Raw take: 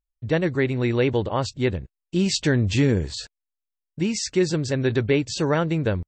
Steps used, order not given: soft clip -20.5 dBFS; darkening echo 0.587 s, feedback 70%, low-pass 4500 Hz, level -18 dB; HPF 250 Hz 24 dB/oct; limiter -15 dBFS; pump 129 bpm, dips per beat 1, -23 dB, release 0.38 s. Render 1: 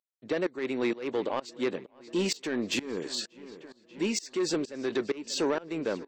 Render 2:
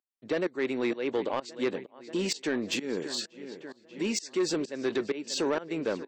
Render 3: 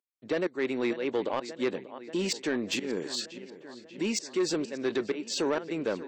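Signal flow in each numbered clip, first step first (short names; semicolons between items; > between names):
HPF > limiter > soft clip > darkening echo > pump; darkening echo > pump > limiter > HPF > soft clip; pump > darkening echo > limiter > HPF > soft clip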